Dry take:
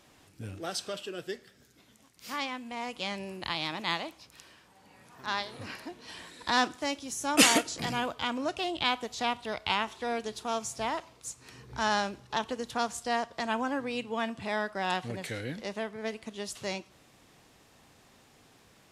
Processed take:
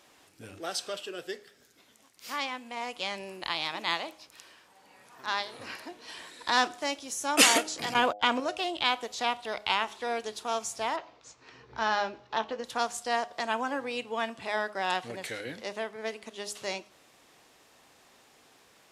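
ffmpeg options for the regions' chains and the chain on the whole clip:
-filter_complex "[0:a]asettb=1/sr,asplit=3[s0][s1][s2];[s0]atrim=end=7.944[s3];[s1]atrim=start=7.94:end=8.4,asetpts=PTS-STARTPTS,afade=t=in:d=0.004:c=qsin,afade=t=out:st=0.456:d=0.004:c=qsin,agate=range=0.0158:threshold=0.0141:ratio=16:release=100:detection=peak,acontrast=74,highshelf=f=7100:g=-9[s4];[s2]atrim=start=8.396[s5];[s3][s4]acrossfade=d=0.004:c1=hsin:c2=qsin[s6];[s6][s5]acrossfade=d=0.004:c1=qsin:c2=hsin,asettb=1/sr,asplit=3[s7][s8][s9];[s7]atrim=end=10.964[s10];[s8]atrim=start=10.96:end=12.64,asetpts=PTS-STARTPTS,afade=t=in:d=0.004:c=qsin,afade=t=out:st=1.676:d=0.004:c=qsin,lowpass=f=6000:w=0.5412,lowpass=f=6000:w=1.3066,highshelf=f=4100:g=-9,asplit=2[s11][s12];[s12]adelay=18,volume=0.299[s13];[s11][s13]amix=inputs=2:normalize=0,atrim=end_sample=74088[s14];[s9]atrim=start=12.636[s15];[s10][s14]acrossfade=d=0.004:c1=hsin:c2=qsin[s16];[s16][s15]acrossfade=d=0.004:c1=qsin:c2=hsin,bass=f=250:g=-12,treble=f=4000:g=0,bandreject=f=103.5:t=h:w=4,bandreject=f=207:t=h:w=4,bandreject=f=310.5:t=h:w=4,bandreject=f=414:t=h:w=4,bandreject=f=517.5:t=h:w=4,bandreject=f=621:t=h:w=4,bandreject=f=724.5:t=h:w=4,bandreject=f=828:t=h:w=4,volume=1.19"

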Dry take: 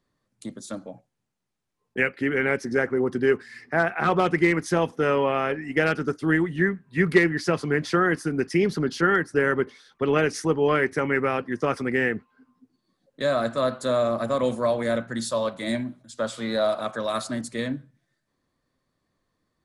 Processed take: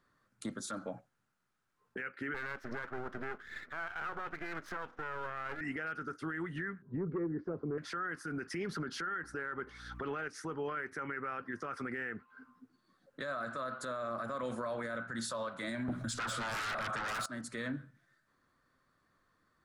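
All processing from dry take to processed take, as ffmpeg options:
-filter_complex "[0:a]asettb=1/sr,asplit=3[s0][s1][s2];[s0]atrim=end=2.344[s3];[s1]atrim=start=2.34:end=5.61,asetpts=PTS-STARTPTS,afade=t=in:d=0.004:c=qsin,afade=t=out:st=3.266:d=0.004:c=qsin,highpass=210,lowpass=3400,aeval=exprs='max(val(0),0)':c=same[s4];[s2]atrim=start=5.606[s5];[s3][s4]acrossfade=d=0.004:c1=hsin:c2=qsin[s6];[s6][s5]acrossfade=d=0.004:c1=qsin:c2=hsin,asettb=1/sr,asplit=3[s7][s8][s9];[s7]atrim=end=6.824[s10];[s8]atrim=start=6.82:end=7.78,asetpts=PTS-STARTPTS,afade=t=in:d=0.004:c=qsin,afade=t=out:st=0.956:d=0.004:c=qsin,lowpass=f=430:t=q:w=1.7,acontrast=75[s11];[s9]atrim=start=7.776[s12];[s10][s11]acrossfade=d=0.004:c1=hsin:c2=qsin[s13];[s13][s12]acrossfade=d=0.004:c1=qsin:c2=hsin,asettb=1/sr,asplit=3[s14][s15][s16];[s14]atrim=end=9.234[s17];[s15]atrim=start=9.23:end=10.28,asetpts=PTS-STARTPTS,afade=t=in:d=0.004:c=qsin,afade=t=out:st=1.046:d=0.004:c=qsin,equalizer=f=810:w=6.4:g=5,acontrast=58,aeval=exprs='val(0)+0.00631*(sin(2*PI*60*n/s)+sin(2*PI*2*60*n/s)/2+sin(2*PI*3*60*n/s)/3+sin(2*PI*4*60*n/s)/4+sin(2*PI*5*60*n/s)/5)':c=same[s18];[s16]atrim=start=10.276[s19];[s17][s18]acrossfade=d=0.004:c1=hsin:c2=qsin[s20];[s20][s19]acrossfade=d=0.004:c1=qsin:c2=hsin,asettb=1/sr,asplit=3[s21][s22][s23];[s21]atrim=end=15.884[s24];[s22]atrim=start=15.88:end=17.26,asetpts=PTS-STARTPTS,afade=t=in:d=0.004:c=qsin,afade=t=out:st=1.376:d=0.004:c=qsin,lowshelf=f=180:g=11.5,aeval=exprs='0.251*sin(PI/2*7.08*val(0)/0.251)':c=same[s25];[s23]atrim=start=17.256[s26];[s24][s25]acrossfade=d=0.004:c1=hsin:c2=qsin[s27];[s27][s26]acrossfade=d=0.004:c1=qsin:c2=hsin,equalizer=f=1400:t=o:w=0.74:g=14,acompressor=threshold=0.0355:ratio=6,alimiter=level_in=1.58:limit=0.0631:level=0:latency=1:release=31,volume=0.631,volume=0.794"

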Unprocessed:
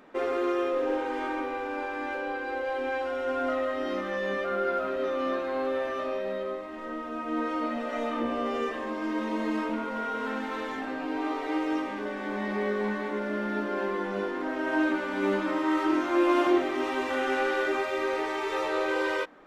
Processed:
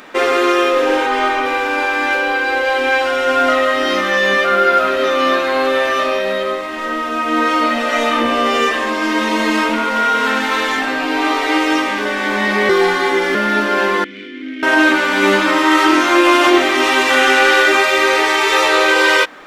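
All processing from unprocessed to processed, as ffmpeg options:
-filter_complex "[0:a]asettb=1/sr,asplit=3[s0][s1][s2];[s0]atrim=end=1.064[s3];[s1]atrim=start=1.06:end=1.46,asetpts=PTS-STARTPTS,afade=t=in:d=0.004:c=qsin,afade=t=out:st=0.396:d=0.004:c=qsin,highshelf=f=4000:g=-8,aecho=1:1:4.8:0.77,atrim=end_sample=17640[s4];[s2]atrim=start=1.456[s5];[s3][s4]acrossfade=d=0.004:c1=hsin:c2=qsin[s6];[s6][s5]acrossfade=d=0.004:c1=qsin:c2=hsin,asettb=1/sr,asplit=3[s7][s8][s9];[s7]atrim=end=12.694[s10];[s8]atrim=start=12.69:end=13.35,asetpts=PTS-STARTPTS,afade=t=in:d=0.004:c=qsin,afade=t=out:st=0.656:d=0.004:c=qsin,afreqshift=-25,aecho=1:1:2.5:0.91,atrim=end_sample=29106[s11];[s9]atrim=start=13.346[s12];[s10][s11]acrossfade=d=0.004:c1=hsin:c2=qsin[s13];[s13][s12]acrossfade=d=0.004:c1=qsin:c2=hsin,asettb=1/sr,asplit=3[s14][s15][s16];[s14]atrim=end=14.044[s17];[s15]atrim=start=14.04:end=14.63,asetpts=PTS-STARTPTS,afade=t=in:d=0.004:c=qsin,afade=t=out:st=0.586:d=0.004:c=qsin,aeval=exprs='0.0668*(abs(mod(val(0)/0.0668+3,4)-2)-1)':c=same,asplit=3[s18][s19][s20];[s18]bandpass=f=270:t=q:w=8,volume=1[s21];[s19]bandpass=f=2290:t=q:w=8,volume=0.501[s22];[s20]bandpass=f=3010:t=q:w=8,volume=0.355[s23];[s21][s22][s23]amix=inputs=3:normalize=0[s24];[s16]atrim=start=14.626[s25];[s17][s24]acrossfade=d=0.004:c1=hsin:c2=qsin[s26];[s26][s25]acrossfade=d=0.004:c1=qsin:c2=hsin,tiltshelf=f=1300:g=-7.5,alimiter=level_in=8.91:limit=0.891:release=50:level=0:latency=1,volume=0.891"

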